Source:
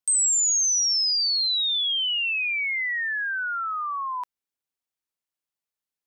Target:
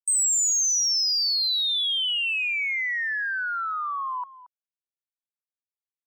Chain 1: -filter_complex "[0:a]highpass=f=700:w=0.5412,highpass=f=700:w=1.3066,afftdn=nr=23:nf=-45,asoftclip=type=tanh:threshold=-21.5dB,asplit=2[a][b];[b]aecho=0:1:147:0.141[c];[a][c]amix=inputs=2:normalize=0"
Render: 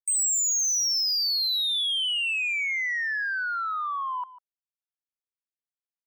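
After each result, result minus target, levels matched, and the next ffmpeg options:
echo 79 ms early; soft clip: distortion +10 dB
-filter_complex "[0:a]highpass=f=700:w=0.5412,highpass=f=700:w=1.3066,afftdn=nr=23:nf=-45,asoftclip=type=tanh:threshold=-21.5dB,asplit=2[a][b];[b]aecho=0:1:226:0.141[c];[a][c]amix=inputs=2:normalize=0"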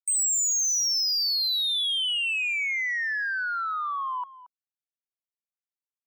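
soft clip: distortion +10 dB
-filter_complex "[0:a]highpass=f=700:w=0.5412,highpass=f=700:w=1.3066,afftdn=nr=23:nf=-45,asoftclip=type=tanh:threshold=-15dB,asplit=2[a][b];[b]aecho=0:1:226:0.141[c];[a][c]amix=inputs=2:normalize=0"

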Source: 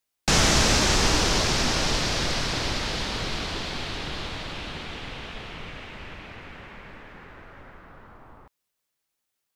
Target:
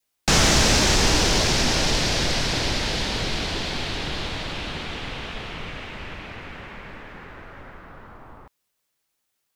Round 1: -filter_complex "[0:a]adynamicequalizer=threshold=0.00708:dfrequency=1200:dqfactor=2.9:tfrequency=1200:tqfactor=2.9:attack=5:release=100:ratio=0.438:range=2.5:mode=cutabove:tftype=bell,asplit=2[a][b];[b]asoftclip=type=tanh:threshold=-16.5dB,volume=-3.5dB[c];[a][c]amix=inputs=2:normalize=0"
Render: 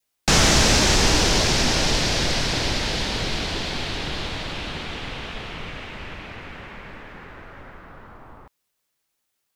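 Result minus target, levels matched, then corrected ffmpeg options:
soft clip: distortion -6 dB
-filter_complex "[0:a]adynamicequalizer=threshold=0.00708:dfrequency=1200:dqfactor=2.9:tfrequency=1200:tqfactor=2.9:attack=5:release=100:ratio=0.438:range=2.5:mode=cutabove:tftype=bell,asplit=2[a][b];[b]asoftclip=type=tanh:threshold=-22.5dB,volume=-3.5dB[c];[a][c]amix=inputs=2:normalize=0"

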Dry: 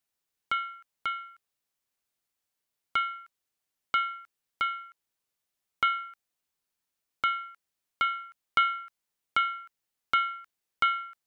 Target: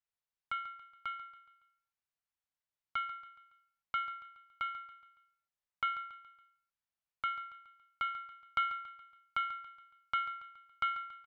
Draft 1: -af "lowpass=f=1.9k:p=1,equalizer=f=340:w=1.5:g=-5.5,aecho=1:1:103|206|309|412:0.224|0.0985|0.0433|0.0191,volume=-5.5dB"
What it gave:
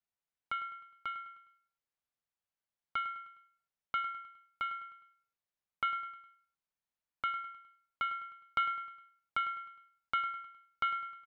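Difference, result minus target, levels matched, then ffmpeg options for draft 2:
echo 37 ms early; 250 Hz band +4.5 dB
-af "lowpass=f=1.9k:p=1,equalizer=f=340:w=1.5:g=-17.5,aecho=1:1:140|280|420|560:0.224|0.0985|0.0433|0.0191,volume=-5.5dB"

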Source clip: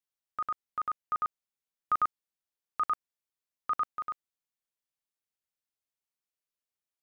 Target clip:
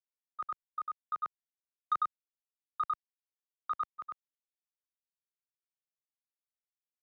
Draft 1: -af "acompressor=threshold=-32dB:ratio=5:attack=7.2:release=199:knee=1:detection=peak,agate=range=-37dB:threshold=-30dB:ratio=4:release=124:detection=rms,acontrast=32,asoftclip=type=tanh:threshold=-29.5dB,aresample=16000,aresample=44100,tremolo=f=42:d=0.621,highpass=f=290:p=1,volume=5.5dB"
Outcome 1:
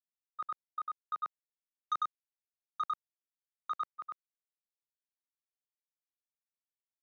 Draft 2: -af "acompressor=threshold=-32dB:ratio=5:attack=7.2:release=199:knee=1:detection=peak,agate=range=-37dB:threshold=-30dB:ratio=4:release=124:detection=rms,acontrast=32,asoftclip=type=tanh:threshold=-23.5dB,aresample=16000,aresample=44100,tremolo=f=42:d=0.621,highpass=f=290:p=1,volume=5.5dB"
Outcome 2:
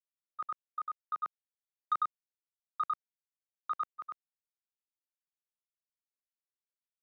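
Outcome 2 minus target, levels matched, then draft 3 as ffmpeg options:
125 Hz band -5.5 dB
-af "acompressor=threshold=-32dB:ratio=5:attack=7.2:release=199:knee=1:detection=peak,agate=range=-37dB:threshold=-30dB:ratio=4:release=124:detection=rms,acontrast=32,asoftclip=type=tanh:threshold=-23.5dB,aresample=16000,aresample=44100,tremolo=f=42:d=0.621,highpass=f=99:p=1,volume=5.5dB"

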